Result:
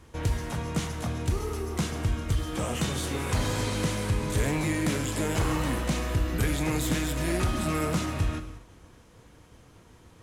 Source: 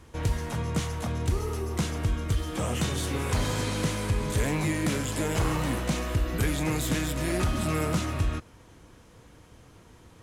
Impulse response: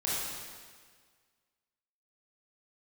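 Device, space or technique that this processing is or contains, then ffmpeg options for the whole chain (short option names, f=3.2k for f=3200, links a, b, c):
keyed gated reverb: -filter_complex "[0:a]asplit=3[a][b][c];[1:a]atrim=start_sample=2205[d];[b][d]afir=irnorm=-1:irlink=0[e];[c]apad=whole_len=451093[f];[e][f]sidechaingate=range=-33dB:threshold=-50dB:ratio=16:detection=peak,volume=-16dB[g];[a][g]amix=inputs=2:normalize=0,volume=-1.5dB"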